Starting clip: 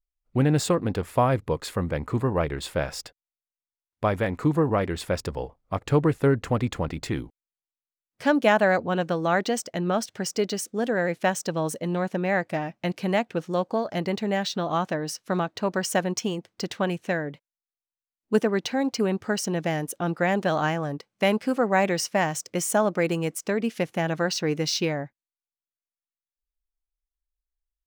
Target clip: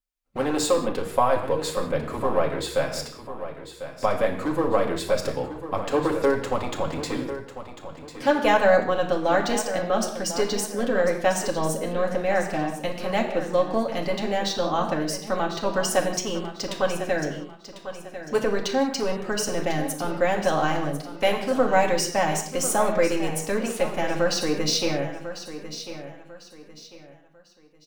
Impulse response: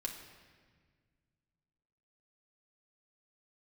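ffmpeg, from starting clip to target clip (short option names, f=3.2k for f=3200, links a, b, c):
-filter_complex "[0:a]highpass=f=110:p=1,acrossover=split=320|1600|2300[a][b][c][d];[a]aeval=exprs='0.0282*(abs(mod(val(0)/0.0282+3,4)-2)-1)':c=same[e];[c]acompressor=threshold=-56dB:ratio=6[f];[e][b][f][d]amix=inputs=4:normalize=0,aecho=1:1:1047|2094|3141:0.251|0.0804|0.0257[g];[1:a]atrim=start_sample=2205,afade=t=out:st=0.25:d=0.01,atrim=end_sample=11466[h];[g][h]afir=irnorm=-1:irlink=0,volume=4dB"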